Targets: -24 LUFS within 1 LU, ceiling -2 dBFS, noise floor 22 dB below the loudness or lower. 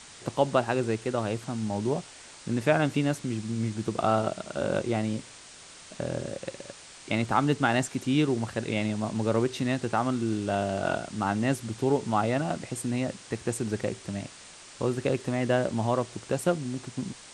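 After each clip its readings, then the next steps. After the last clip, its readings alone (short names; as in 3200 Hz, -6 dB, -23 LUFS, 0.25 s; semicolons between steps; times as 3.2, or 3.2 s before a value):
noise floor -48 dBFS; noise floor target -51 dBFS; loudness -29.0 LUFS; peak -9.5 dBFS; loudness target -24.0 LUFS
-> denoiser 6 dB, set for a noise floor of -48 dBFS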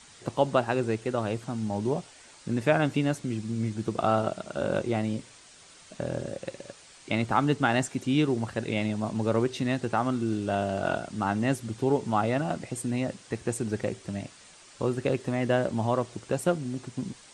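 noise floor -53 dBFS; loudness -29.0 LUFS; peak -9.0 dBFS; loudness target -24.0 LUFS
-> gain +5 dB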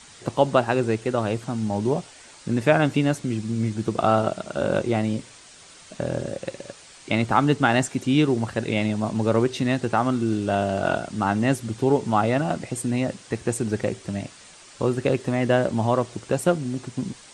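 loudness -24.0 LUFS; peak -4.0 dBFS; noise floor -48 dBFS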